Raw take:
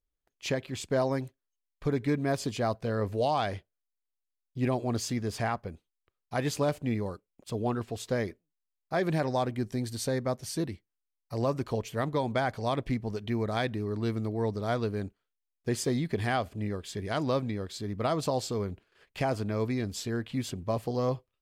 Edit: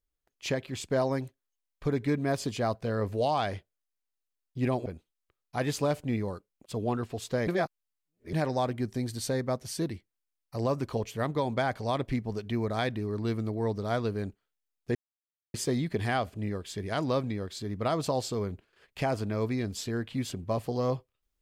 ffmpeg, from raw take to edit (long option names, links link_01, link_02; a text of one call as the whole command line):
ffmpeg -i in.wav -filter_complex "[0:a]asplit=5[link_01][link_02][link_03][link_04][link_05];[link_01]atrim=end=4.862[link_06];[link_02]atrim=start=5.638:end=8.252[link_07];[link_03]atrim=start=8.248:end=9.112,asetpts=PTS-STARTPTS,areverse[link_08];[link_04]atrim=start=9.108:end=15.73,asetpts=PTS-STARTPTS,afade=type=out:start_time=6.618:duration=0.004:curve=hsin,apad=pad_dur=0.59[link_09];[link_05]atrim=start=15.73,asetpts=PTS-STARTPTS,afade=type=in:duration=0.004:curve=hsin[link_10];[link_06][link_07]acrossfade=duration=0.004:curve1=hsin:curve2=hsin[link_11];[link_11][link_08]acrossfade=duration=0.004:curve1=hsin:curve2=hsin[link_12];[link_09][link_10]concat=n=2:v=0:a=1[link_13];[link_12][link_13]acrossfade=duration=0.004:curve1=hsin:curve2=hsin" out.wav